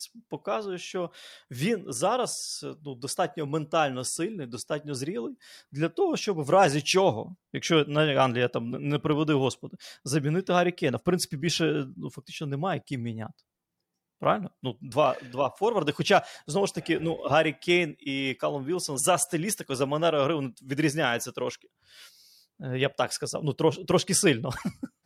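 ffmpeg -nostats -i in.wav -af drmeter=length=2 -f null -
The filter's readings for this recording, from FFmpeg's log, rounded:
Channel 1: DR: 11.7
Overall DR: 11.7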